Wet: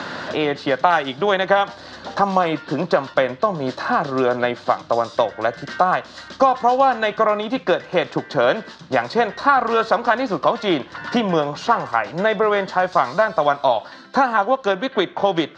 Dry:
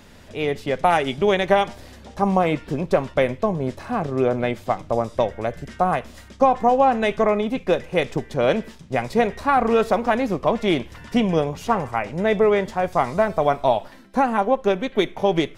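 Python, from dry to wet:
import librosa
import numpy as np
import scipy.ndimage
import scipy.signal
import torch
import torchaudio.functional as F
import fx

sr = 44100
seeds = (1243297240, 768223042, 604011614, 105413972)

y = fx.cabinet(x, sr, low_hz=200.0, low_slope=12, high_hz=6000.0, hz=(220.0, 420.0, 1100.0, 1500.0, 2300.0, 4200.0), db=(-8, -7, 4, 7, -7, 8))
y = fx.band_squash(y, sr, depth_pct=70)
y = F.gain(torch.from_numpy(y), 2.5).numpy()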